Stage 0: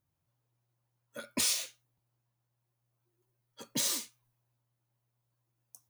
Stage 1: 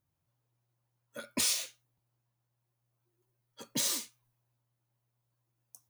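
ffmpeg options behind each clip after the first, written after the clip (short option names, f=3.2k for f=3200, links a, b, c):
-af anull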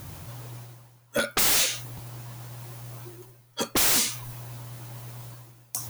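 -af "areverse,acompressor=mode=upward:threshold=-44dB:ratio=2.5,areverse,aeval=exprs='0.126*sin(PI/2*7.08*val(0)/0.126)':c=same"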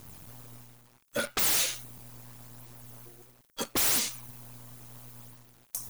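-filter_complex "[0:a]acrossover=split=5800[a][b];[a]acrusher=bits=6:dc=4:mix=0:aa=0.000001[c];[b]aphaser=in_gain=1:out_gain=1:delay=1.5:decay=0.61:speed=0.74:type=sinusoidal[d];[c][d]amix=inputs=2:normalize=0,volume=-5.5dB"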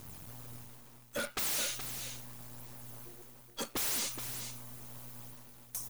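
-af "asoftclip=type=tanh:threshold=-31.5dB,aecho=1:1:422:0.376"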